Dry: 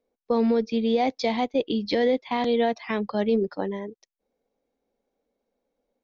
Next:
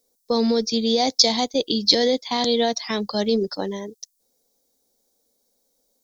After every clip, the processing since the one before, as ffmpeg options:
-af "aexciter=amount=14.2:drive=2.8:freq=3.9k,volume=1.5dB"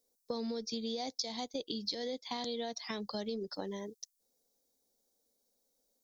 -af "acompressor=threshold=-26dB:ratio=6,volume=-9dB"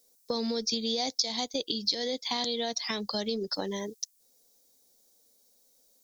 -filter_complex "[0:a]highshelf=f=2k:g=7.5,asplit=2[a][b];[b]alimiter=level_in=2dB:limit=-24dB:level=0:latency=1:release=362,volume=-2dB,volume=1dB[c];[a][c]amix=inputs=2:normalize=0"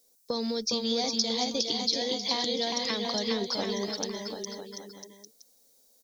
-af "aecho=1:1:410|738|1000|1210|1378:0.631|0.398|0.251|0.158|0.1"

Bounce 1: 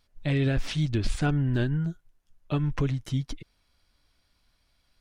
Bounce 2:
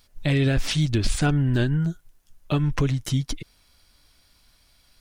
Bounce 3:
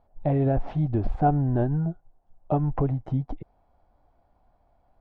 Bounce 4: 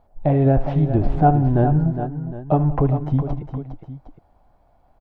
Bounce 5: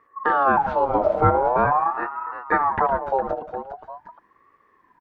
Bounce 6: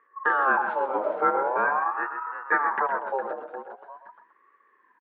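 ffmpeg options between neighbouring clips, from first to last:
-filter_complex "[0:a]highshelf=f=5.2k:g=9.5,asplit=2[a][b];[b]acompressor=threshold=-33dB:ratio=6,volume=0.5dB[c];[a][c]amix=inputs=2:normalize=0,volume=1.5dB"
-af "lowpass=f=760:t=q:w=4.9,volume=-3dB"
-af "aecho=1:1:74|183|409|761:0.178|0.106|0.335|0.168,volume=6dB"
-af "aeval=exprs='val(0)*sin(2*PI*870*n/s+870*0.3/0.44*sin(2*PI*0.44*n/s))':c=same"
-af "highpass=f=270:w=0.5412,highpass=f=270:w=1.3066,equalizer=f=290:t=q:w=4:g=-5,equalizer=f=700:t=q:w=4:g=-7,equalizer=f=1.6k:t=q:w=4:g=8,lowpass=f=3.4k:w=0.5412,lowpass=f=3.4k:w=1.3066,aecho=1:1:127:0.355,volume=-4.5dB"

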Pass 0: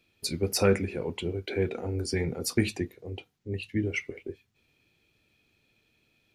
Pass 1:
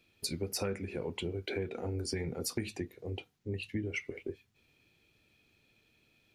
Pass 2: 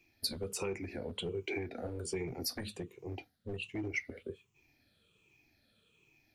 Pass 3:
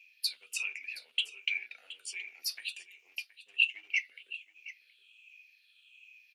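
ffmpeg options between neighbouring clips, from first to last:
-af "acompressor=threshold=-33dB:ratio=5"
-filter_complex "[0:a]afftfilt=real='re*pow(10,13/40*sin(2*PI*(0.72*log(max(b,1)*sr/1024/100)/log(2)-(-1.3)*(pts-256)/sr)))':imag='im*pow(10,13/40*sin(2*PI*(0.72*log(max(b,1)*sr/1024/100)/log(2)-(-1.3)*(pts-256)/sr)))':win_size=1024:overlap=0.75,acrossover=split=290|660|2000[a][b][c][d];[a]aeval=exprs='0.0168*(abs(mod(val(0)/0.0168+3,4)-2)-1)':c=same[e];[e][b][c][d]amix=inputs=4:normalize=0,volume=-3dB"
-af "highpass=f=2.7k:t=q:w=8.4,aecho=1:1:721:0.158"

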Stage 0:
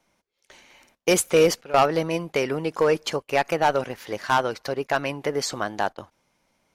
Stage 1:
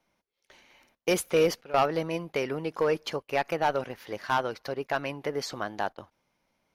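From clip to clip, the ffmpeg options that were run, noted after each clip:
-af "equalizer=f=7.8k:t=o:w=0.57:g=-9,volume=-5.5dB"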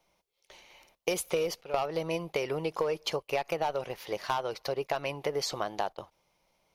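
-af "equalizer=f=100:t=o:w=0.67:g=-7,equalizer=f=250:t=o:w=0.67:g=-12,equalizer=f=1.6k:t=o:w=0.67:g=-9,acompressor=threshold=-31dB:ratio=12,volume=5dB"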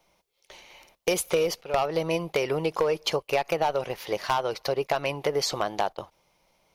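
-af "aeval=exprs='0.106*(abs(mod(val(0)/0.106+3,4)-2)-1)':c=same,volume=5.5dB"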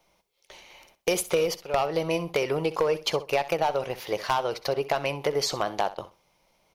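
-af "aecho=1:1:64|128:0.168|0.0353"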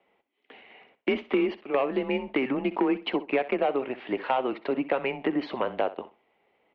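-af "highpass=f=310:t=q:w=0.5412,highpass=f=310:t=q:w=1.307,lowpass=f=3.1k:t=q:w=0.5176,lowpass=f=3.1k:t=q:w=0.7071,lowpass=f=3.1k:t=q:w=1.932,afreqshift=-130"

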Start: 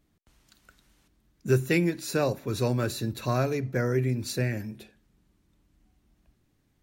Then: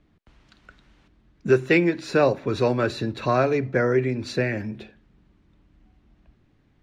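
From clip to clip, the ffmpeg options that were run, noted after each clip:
-filter_complex "[0:a]acrossover=split=270[a][b];[a]acompressor=threshold=-37dB:ratio=6[c];[c][b]amix=inputs=2:normalize=0,lowpass=3.2k,volume=8dB"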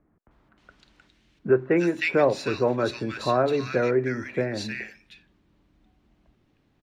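-filter_complex "[0:a]lowshelf=f=180:g=-8,acrossover=split=1700[a][b];[b]adelay=310[c];[a][c]amix=inputs=2:normalize=0"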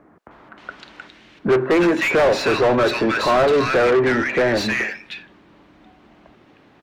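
-filter_complex "[0:a]asplit=2[a][b];[b]highpass=f=720:p=1,volume=30dB,asoftclip=type=tanh:threshold=-8dB[c];[a][c]amix=inputs=2:normalize=0,lowpass=f=1.5k:p=1,volume=-6dB"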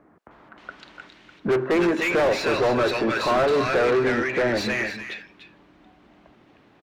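-af "asoftclip=type=hard:threshold=-11.5dB,aecho=1:1:293:0.316,volume=-4.5dB"

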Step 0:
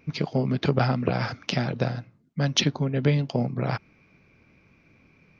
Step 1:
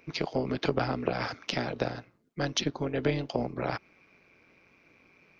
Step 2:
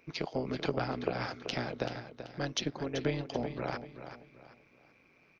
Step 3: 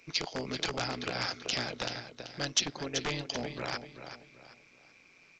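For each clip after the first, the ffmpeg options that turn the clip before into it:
-filter_complex "[0:a]tremolo=f=180:d=0.621,bass=f=250:g=-13,treble=f=4k:g=0,acrossover=split=400[a][b];[b]acompressor=threshold=-33dB:ratio=3[c];[a][c]amix=inputs=2:normalize=0,volume=3.5dB"
-af "aecho=1:1:384|768|1152|1536:0.299|0.0985|0.0325|0.0107,volume=-4.5dB"
-af "aeval=exprs='0.0501*(abs(mod(val(0)/0.0501+3,4)-2)-1)':c=same,crystalizer=i=6.5:c=0,volume=-2.5dB" -ar 16000 -c:a pcm_alaw

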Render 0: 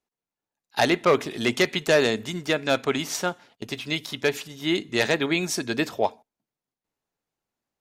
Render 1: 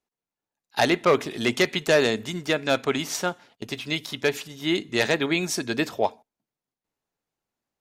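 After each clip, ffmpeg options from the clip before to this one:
-af anull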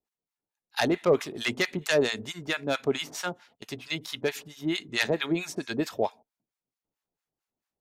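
-filter_complex "[0:a]acrossover=split=860[a][b];[a]aeval=exprs='val(0)*(1-1/2+1/2*cos(2*PI*4.5*n/s))':c=same[c];[b]aeval=exprs='val(0)*(1-1/2-1/2*cos(2*PI*4.5*n/s))':c=same[d];[c][d]amix=inputs=2:normalize=0"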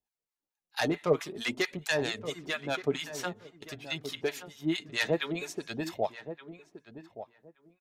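-filter_complex "[0:a]flanger=delay=1.1:depth=5.7:regen=31:speed=0.51:shape=sinusoidal,asplit=2[a][b];[b]adelay=1173,lowpass=f=1.3k:p=1,volume=-11.5dB,asplit=2[c][d];[d]adelay=1173,lowpass=f=1.3k:p=1,volume=0.19[e];[a][c][e]amix=inputs=3:normalize=0"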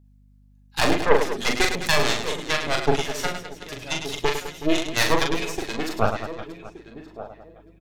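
-af "aeval=exprs='0.282*(cos(1*acos(clip(val(0)/0.282,-1,1)))-cos(1*PI/2))+0.0891*(cos(6*acos(clip(val(0)/0.282,-1,1)))-cos(6*PI/2))':c=same,aecho=1:1:40|104|206.4|370.2|632.4:0.631|0.398|0.251|0.158|0.1,aeval=exprs='val(0)+0.00126*(sin(2*PI*50*n/s)+sin(2*PI*2*50*n/s)/2+sin(2*PI*3*50*n/s)/3+sin(2*PI*4*50*n/s)/4+sin(2*PI*5*50*n/s)/5)':c=same,volume=5dB"

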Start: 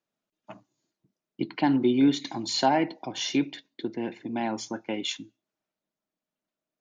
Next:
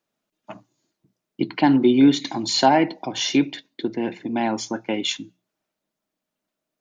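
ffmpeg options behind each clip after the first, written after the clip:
-af "bandreject=f=60:t=h:w=6,bandreject=f=120:t=h:w=6,bandreject=f=180:t=h:w=6,volume=6.5dB"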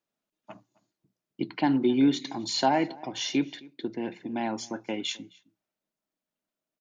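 -filter_complex "[0:a]asplit=2[a][b];[b]adelay=262.4,volume=-23dB,highshelf=f=4k:g=-5.9[c];[a][c]amix=inputs=2:normalize=0,volume=-7.5dB"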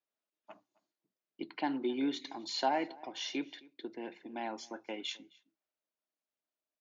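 -af "highpass=340,lowpass=5.6k,volume=-6.5dB"

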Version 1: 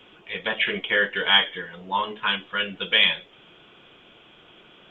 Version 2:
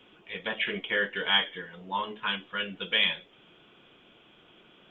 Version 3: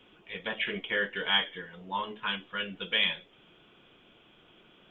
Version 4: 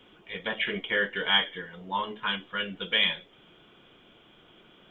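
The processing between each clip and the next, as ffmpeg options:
-af "equalizer=f=240:w=1.1:g=3.5,volume=-6.5dB"
-af "lowshelf=f=80:g=6.5,volume=-2dB"
-af "bandreject=f=2.6k:w=13,volume=3dB"

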